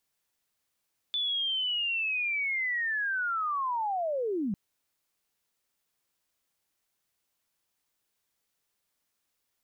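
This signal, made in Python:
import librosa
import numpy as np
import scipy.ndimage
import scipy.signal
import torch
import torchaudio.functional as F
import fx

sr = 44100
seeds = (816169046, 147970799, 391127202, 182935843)

y = fx.chirp(sr, length_s=3.4, from_hz=3500.0, to_hz=180.0, law='linear', from_db=-27.0, to_db=-27.5)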